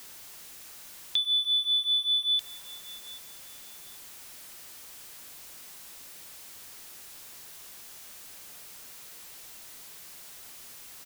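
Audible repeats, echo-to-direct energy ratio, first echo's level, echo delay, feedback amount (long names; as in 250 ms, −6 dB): 2, −20.0 dB, −20.5 dB, 787 ms, 25%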